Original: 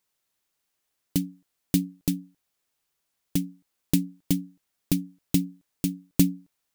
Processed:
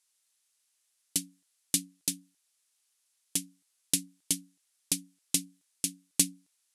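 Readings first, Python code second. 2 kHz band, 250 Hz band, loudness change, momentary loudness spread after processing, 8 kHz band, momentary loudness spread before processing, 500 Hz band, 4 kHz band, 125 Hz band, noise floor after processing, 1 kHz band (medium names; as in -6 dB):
0.0 dB, -14.5 dB, -3.0 dB, 6 LU, +7.5 dB, 13 LU, -11.5 dB, +3.5 dB, -17.0 dB, -76 dBFS, no reading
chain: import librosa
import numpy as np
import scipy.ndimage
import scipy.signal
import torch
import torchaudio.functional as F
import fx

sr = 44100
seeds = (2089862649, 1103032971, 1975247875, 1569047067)

y = scipy.signal.sosfilt(scipy.signal.butter(6, 11000.0, 'lowpass', fs=sr, output='sos'), x)
y = fx.tilt_eq(y, sr, slope=4.5)
y = F.gain(torch.from_numpy(y), -5.5).numpy()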